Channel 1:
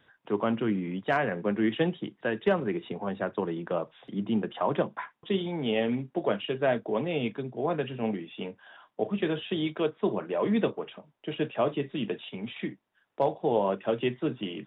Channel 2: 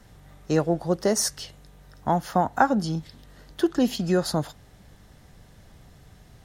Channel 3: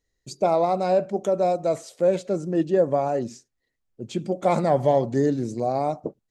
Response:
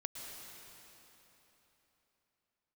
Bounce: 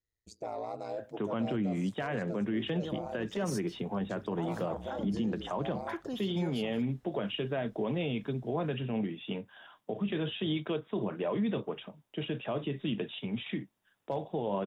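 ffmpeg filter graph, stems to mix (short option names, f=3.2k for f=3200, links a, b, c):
-filter_complex "[0:a]bass=f=250:g=7,treble=f=4k:g=11,adelay=900,volume=-2.5dB[a];[1:a]adelay=2300,volume=-17dB[b];[2:a]equalizer=f=200:t=o:w=0.27:g=-6.5,acontrast=65,aeval=exprs='val(0)*sin(2*PI*56*n/s)':c=same,volume=-18.5dB[c];[b][c]amix=inputs=2:normalize=0,alimiter=level_in=5.5dB:limit=-24dB:level=0:latency=1:release=16,volume=-5.5dB,volume=0dB[d];[a][d]amix=inputs=2:normalize=0,alimiter=limit=-24dB:level=0:latency=1:release=59"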